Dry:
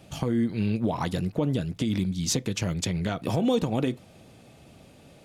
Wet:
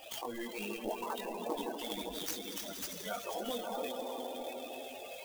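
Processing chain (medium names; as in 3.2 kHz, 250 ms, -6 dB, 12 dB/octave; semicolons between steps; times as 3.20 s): high-pass 640 Hz 12 dB/octave; treble shelf 4.4 kHz +9.5 dB; compression 4:1, threshold -49 dBFS, peak gain reduction 25.5 dB; 0.93–1.73 s: phase dispersion lows, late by 113 ms, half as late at 2 kHz; on a send: echo with a slow build-up 80 ms, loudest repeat 5, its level -9 dB; on the sum: AM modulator 230 Hz, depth 35%; chorus voices 6, 1.3 Hz, delay 22 ms, depth 3.1 ms; loudest bins only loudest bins 32; sampling jitter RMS 0.032 ms; trim +16 dB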